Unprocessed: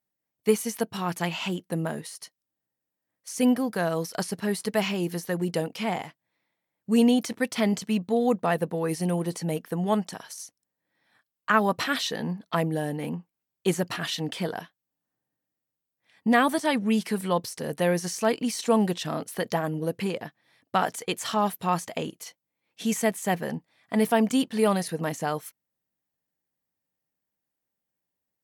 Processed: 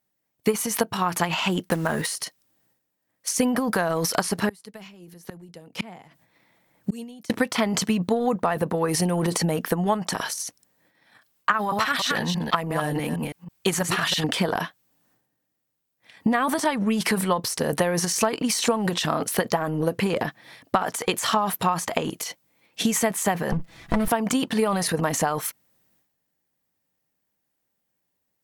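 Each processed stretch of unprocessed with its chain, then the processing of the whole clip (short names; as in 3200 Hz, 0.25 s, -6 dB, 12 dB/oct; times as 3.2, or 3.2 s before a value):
1.69–2.1 block floating point 5-bit + bell 1600 Hz +4.5 dB 0.96 oct
4.49–7.3 tone controls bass +3 dB, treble +3 dB + flipped gate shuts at -23 dBFS, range -33 dB + three-band squash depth 40%
11.53–14.24 reverse delay 0.163 s, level -8 dB + bell 330 Hz -6.5 dB 2.4 oct
23.52–24.08 minimum comb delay 6 ms + tone controls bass +11 dB, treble -1 dB + compressor 1.5:1, threshold -25 dBFS
whole clip: transient shaper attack +7 dB, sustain +11 dB; dynamic EQ 1100 Hz, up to +7 dB, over -38 dBFS, Q 1.1; compressor, threshold -27 dBFS; gain +7 dB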